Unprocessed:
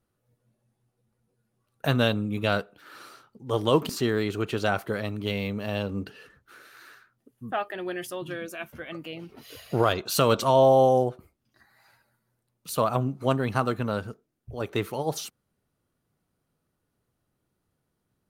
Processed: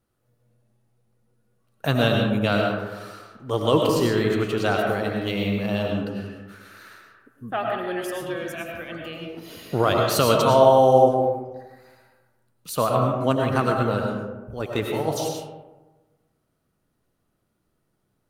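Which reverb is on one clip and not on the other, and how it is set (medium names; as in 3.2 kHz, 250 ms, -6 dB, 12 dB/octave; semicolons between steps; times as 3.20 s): algorithmic reverb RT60 1.2 s, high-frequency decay 0.4×, pre-delay 65 ms, DRR 0.5 dB; trim +1.5 dB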